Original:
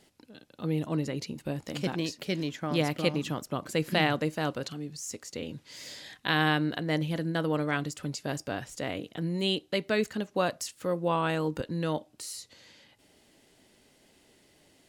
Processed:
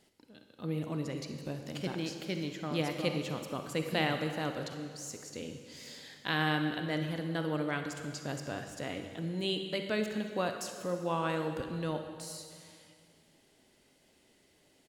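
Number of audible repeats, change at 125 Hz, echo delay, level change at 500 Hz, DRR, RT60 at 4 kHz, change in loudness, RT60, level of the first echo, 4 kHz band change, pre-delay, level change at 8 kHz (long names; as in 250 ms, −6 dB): 1, −4.5 dB, 65 ms, −4.5 dB, 5.5 dB, 1.9 s, −4.5 dB, 2.2 s, −15.0 dB, −4.5 dB, 35 ms, −4.5 dB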